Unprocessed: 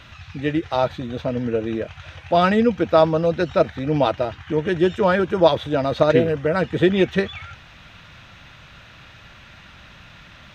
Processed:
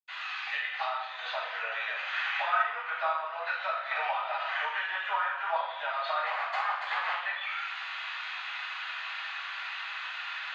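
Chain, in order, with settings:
0:06.18–0:07.05: sub-harmonics by changed cycles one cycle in 2, inverted
treble cut that deepens with the level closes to 2,300 Hz, closed at −15.5 dBFS
Butterworth high-pass 800 Hz 48 dB per octave
downward compressor 4 to 1, threshold −40 dBFS, peak gain reduction 19.5 dB
0:02.04–0:02.50: parametric band 1,700 Hz +6 dB 1 octave
convolution reverb RT60 0.85 s, pre-delay 77 ms
0:03.91–0:04.66: multiband upward and downward compressor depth 100%
level +1.5 dB

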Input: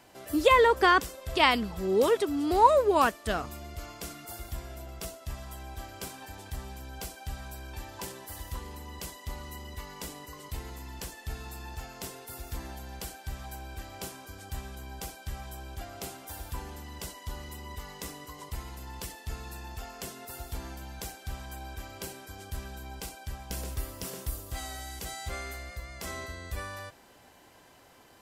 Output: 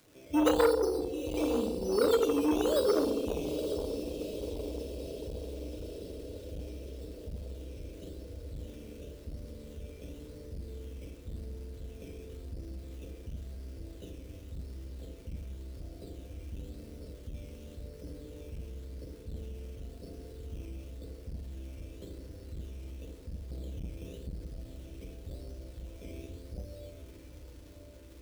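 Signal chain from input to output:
Butterworth low-pass 600 Hz 72 dB per octave
sample-and-hold swept by an LFO 12×, swing 60% 0.93 Hz
surface crackle 480 per second −47 dBFS
on a send: feedback delay with all-pass diffusion 906 ms, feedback 64%, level −9 dB
on the sum: feedback delay network reverb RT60 1.7 s, low-frequency decay 0.75×, high-frequency decay 0.35×, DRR 0 dB
saturating transformer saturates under 840 Hz
level −4 dB

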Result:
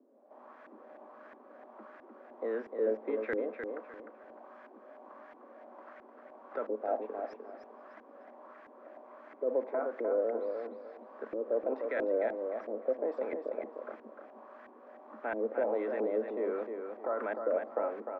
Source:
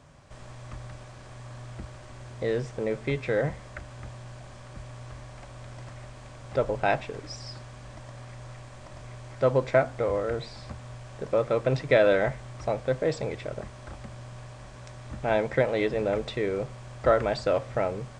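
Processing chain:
Butterworth high-pass 220 Hz 96 dB per octave
brickwall limiter −20 dBFS, peak gain reduction 11 dB
auto-filter low-pass saw up 1.5 Hz 340–1,800 Hz
repeating echo 303 ms, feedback 27%, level −6 dB
level −7 dB

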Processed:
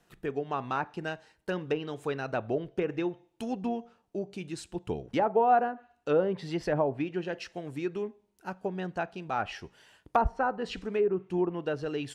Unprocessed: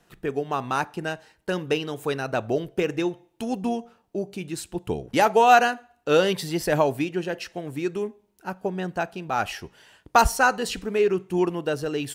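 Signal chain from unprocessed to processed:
treble cut that deepens with the level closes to 910 Hz, closed at −17 dBFS
level −5.5 dB

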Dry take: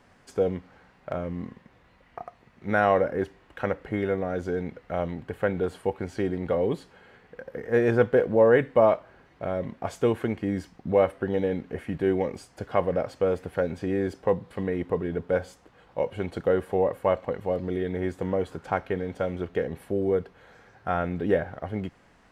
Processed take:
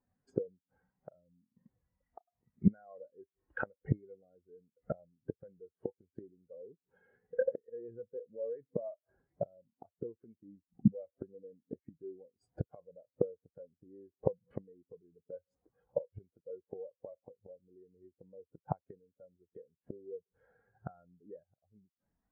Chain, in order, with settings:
brickwall limiter −14 dBFS, peak gain reduction 6.5 dB
gate with flip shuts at −25 dBFS, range −25 dB
every bin expanded away from the loudest bin 2.5 to 1
level +5 dB

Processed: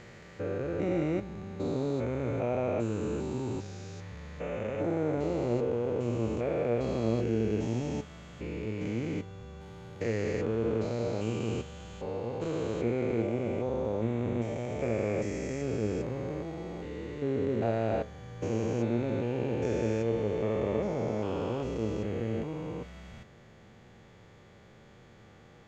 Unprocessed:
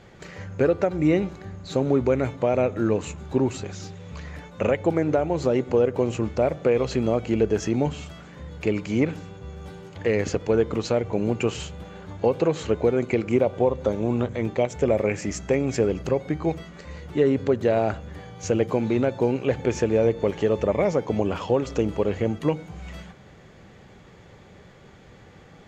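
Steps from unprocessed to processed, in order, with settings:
spectrum averaged block by block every 400 ms
flanger 1.8 Hz, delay 8.3 ms, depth 1.1 ms, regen +73%

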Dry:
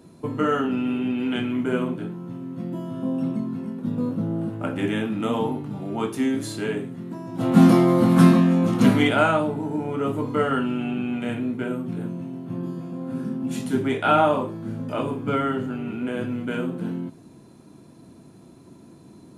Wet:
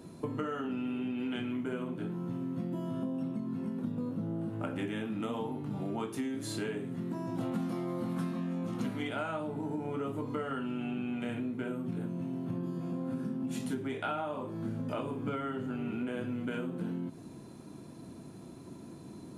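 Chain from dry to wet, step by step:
downward compressor 12 to 1, threshold −32 dBFS, peak gain reduction 23 dB

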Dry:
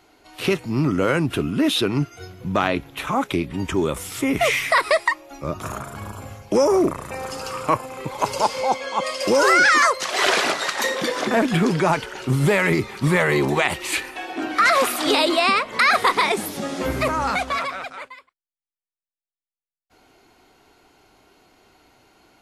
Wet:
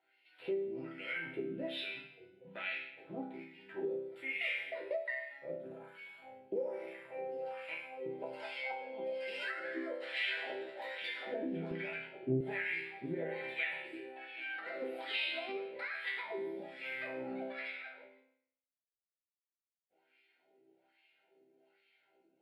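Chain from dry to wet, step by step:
0:02.74–0:04.16: running median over 15 samples
mains-hum notches 50/100/150/200/250/300/350/400 Hz
LFO wah 1.2 Hz 330–2,500 Hz, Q 2.5
resonators tuned to a chord C3 major, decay 0.65 s
downward compressor 5 to 1, threshold −45 dBFS, peak gain reduction 12.5 dB
low-shelf EQ 190 Hz −6.5 dB
phaser with its sweep stopped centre 2,700 Hz, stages 4
0:11.71–0:12.41: spectral tilt −3 dB per octave
highs frequency-modulated by the lows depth 0.12 ms
level +14 dB

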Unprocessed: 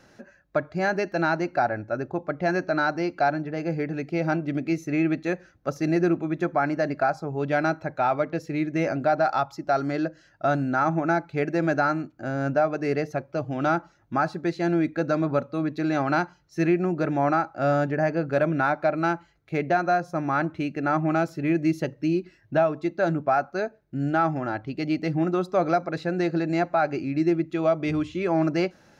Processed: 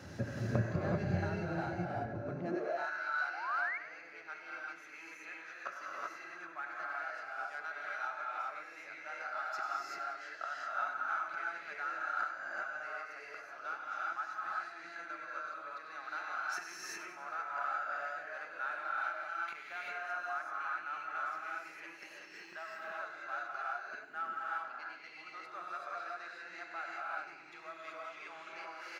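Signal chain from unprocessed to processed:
sub-octave generator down 1 octave, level 0 dB
0:21.83–0:22.63: high-shelf EQ 4,400 Hz +7 dB
in parallel at −4.5 dB: gain into a clipping stage and back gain 18.5 dB
on the sum: gate with flip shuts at −22 dBFS, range −24 dB
reverb whose tail is shaped and stops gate 410 ms rising, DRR −5.5 dB
0:03.30–0:03.78: sound drawn into the spectrogram rise 680–2,300 Hz −41 dBFS
on a send: repeating echo 96 ms, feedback 56%, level −12.5 dB
on the sum: high-pass filter sweep 100 Hz → 1,300 Hz, 0:02.29–0:02.92
level −1 dB

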